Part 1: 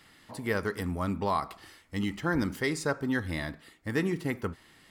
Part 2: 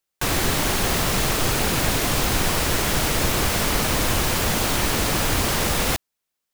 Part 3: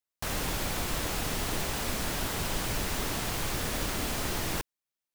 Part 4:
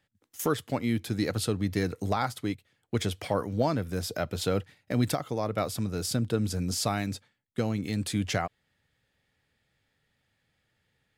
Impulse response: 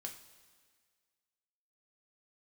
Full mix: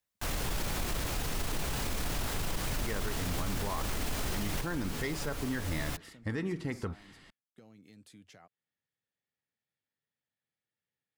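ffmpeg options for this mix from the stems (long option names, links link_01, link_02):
-filter_complex "[0:a]lowpass=7200,adelay=2400,volume=0.5dB[link_01];[1:a]aecho=1:1:7:0.44,volume=-16dB[link_02];[2:a]volume=2dB[link_03];[3:a]highpass=170,alimiter=limit=-19.5dB:level=0:latency=1:release=25,acompressor=threshold=-35dB:ratio=3,volume=-20dB[link_04];[link_01][link_02][link_03]amix=inputs=3:normalize=0,acompressor=threshold=-31dB:ratio=6,volume=0dB[link_05];[link_04][link_05]amix=inputs=2:normalize=0,lowshelf=frequency=78:gain=9.5,alimiter=level_in=0.5dB:limit=-24dB:level=0:latency=1:release=11,volume=-0.5dB"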